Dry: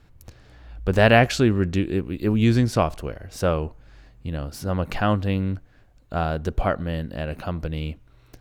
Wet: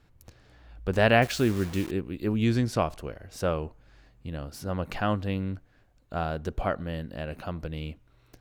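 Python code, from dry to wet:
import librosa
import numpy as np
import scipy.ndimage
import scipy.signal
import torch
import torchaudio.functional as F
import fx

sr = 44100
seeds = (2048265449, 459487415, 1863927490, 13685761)

y = fx.low_shelf(x, sr, hz=110.0, db=-4.0)
y = fx.quant_dither(y, sr, seeds[0], bits=6, dither='none', at=(1.22, 1.91))
y = y * 10.0 ** (-5.0 / 20.0)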